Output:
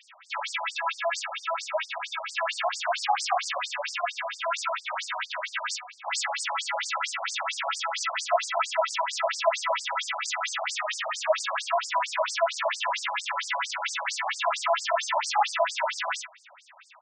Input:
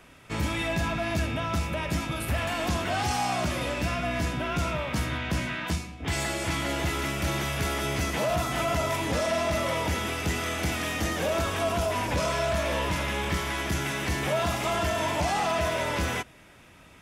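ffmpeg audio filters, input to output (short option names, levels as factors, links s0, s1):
-filter_complex "[0:a]asplit=2[s0][s1];[s1]adelay=43,volume=0.299[s2];[s0][s2]amix=inputs=2:normalize=0,afftfilt=real='re*between(b*sr/1024,780*pow(6500/780,0.5+0.5*sin(2*PI*4.4*pts/sr))/1.41,780*pow(6500/780,0.5+0.5*sin(2*PI*4.4*pts/sr))*1.41)':imag='im*between(b*sr/1024,780*pow(6500/780,0.5+0.5*sin(2*PI*4.4*pts/sr))/1.41,780*pow(6500/780,0.5+0.5*sin(2*PI*4.4*pts/sr))*1.41)':win_size=1024:overlap=0.75,volume=2.51"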